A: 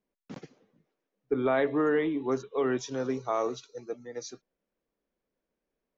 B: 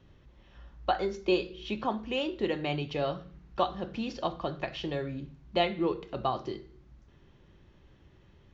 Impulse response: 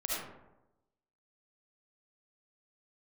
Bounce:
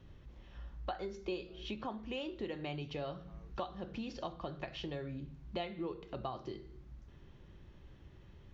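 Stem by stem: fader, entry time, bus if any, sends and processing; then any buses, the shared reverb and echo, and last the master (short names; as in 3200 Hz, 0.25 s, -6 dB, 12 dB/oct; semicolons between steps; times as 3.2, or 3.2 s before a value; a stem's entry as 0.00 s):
-13.0 dB, 0.00 s, no send, compressor 3:1, threshold -39 dBFS, peak gain reduction 13 dB; auto duck -11 dB, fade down 0.30 s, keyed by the second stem
-1.0 dB, 0.00 s, no send, low shelf 120 Hz +5.5 dB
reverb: off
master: compressor 2.5:1, threshold -42 dBFS, peak gain reduction 13.5 dB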